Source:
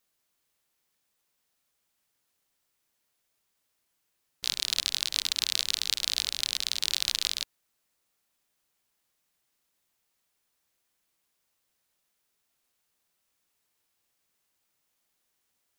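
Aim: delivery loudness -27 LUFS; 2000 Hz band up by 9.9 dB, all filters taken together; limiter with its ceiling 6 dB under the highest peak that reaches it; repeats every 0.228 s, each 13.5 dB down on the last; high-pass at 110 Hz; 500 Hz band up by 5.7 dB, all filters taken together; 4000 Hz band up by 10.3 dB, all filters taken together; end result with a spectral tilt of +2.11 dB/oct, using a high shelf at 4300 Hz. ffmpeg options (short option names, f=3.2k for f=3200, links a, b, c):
-af "highpass=110,equalizer=f=500:t=o:g=6.5,equalizer=f=2k:t=o:g=8.5,equalizer=f=4k:t=o:g=7,highshelf=f=4.3k:g=5,alimiter=limit=-1.5dB:level=0:latency=1,aecho=1:1:228|456:0.211|0.0444,volume=-6dB"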